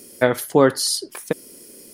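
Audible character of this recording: noise floor -45 dBFS; spectral tilt -3.5 dB/octave

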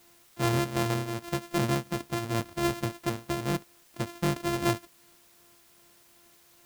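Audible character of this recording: a buzz of ramps at a fixed pitch in blocks of 128 samples; tremolo triangle 2.6 Hz, depth 65%; a quantiser's noise floor 10-bit, dither triangular

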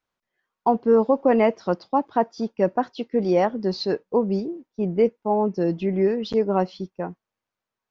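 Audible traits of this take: noise floor -87 dBFS; spectral tilt -4.5 dB/octave

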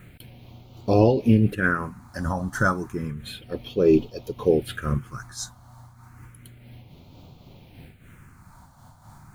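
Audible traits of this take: a quantiser's noise floor 12-bit, dither triangular; phasing stages 4, 0.31 Hz, lowest notch 410–1700 Hz; random flutter of the level

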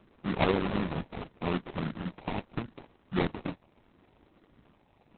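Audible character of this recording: a buzz of ramps at a fixed pitch in blocks of 32 samples; phasing stages 12, 0.76 Hz, lowest notch 410–1500 Hz; aliases and images of a low sample rate 1.6 kHz, jitter 20%; Opus

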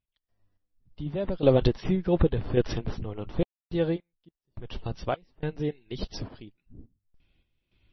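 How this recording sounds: random-step tremolo 3.5 Hz, depth 100%; MP3

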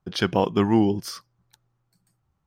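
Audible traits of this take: noise floor -75 dBFS; spectral tilt -5.5 dB/octave

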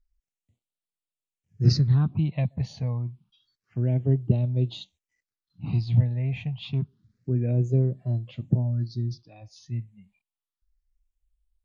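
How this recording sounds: phasing stages 6, 0.28 Hz, lowest notch 350–1700 Hz; MP3

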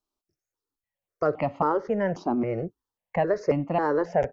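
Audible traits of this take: notches that jump at a steady rate 3.7 Hz 510–1600 Hz

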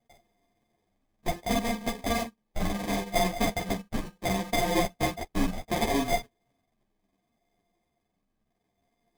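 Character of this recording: a buzz of ramps at a fixed pitch in blocks of 64 samples; phasing stages 12, 0.69 Hz, lowest notch 660–4600 Hz; aliases and images of a low sample rate 1.4 kHz, jitter 0%; a shimmering, thickened sound

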